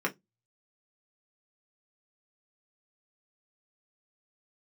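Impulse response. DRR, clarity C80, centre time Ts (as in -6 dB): -1.5 dB, 35.0 dB, 9 ms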